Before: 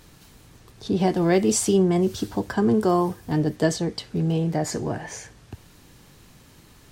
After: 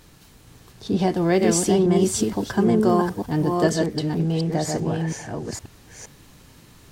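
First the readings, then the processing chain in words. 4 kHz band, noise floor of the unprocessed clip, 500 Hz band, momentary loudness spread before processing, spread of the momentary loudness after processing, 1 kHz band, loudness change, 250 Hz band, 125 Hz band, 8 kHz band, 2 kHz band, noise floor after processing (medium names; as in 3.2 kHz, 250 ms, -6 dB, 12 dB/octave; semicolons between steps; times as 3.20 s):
+2.0 dB, -52 dBFS, +1.5 dB, 10 LU, 13 LU, +2.0 dB, +1.5 dB, +2.0 dB, +1.5 dB, +2.0 dB, +1.5 dB, -51 dBFS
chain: chunks repeated in reverse 466 ms, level -3 dB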